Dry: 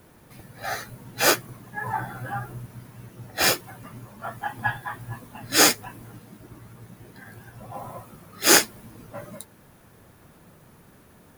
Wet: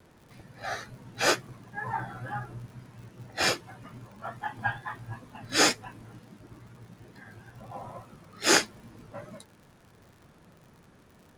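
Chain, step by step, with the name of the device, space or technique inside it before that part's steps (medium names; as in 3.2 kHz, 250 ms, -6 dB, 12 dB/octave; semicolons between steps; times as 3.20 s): lo-fi chain (low-pass 6.8 kHz 12 dB/octave; wow and flutter; crackle 74 per s -42 dBFS); trim -4 dB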